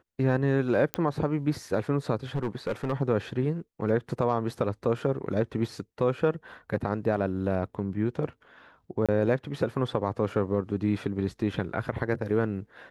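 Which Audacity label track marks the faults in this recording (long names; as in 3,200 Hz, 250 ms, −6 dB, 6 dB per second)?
0.940000	0.940000	click −11 dBFS
2.350000	2.930000	clipping −24 dBFS
9.060000	9.090000	drop-out 26 ms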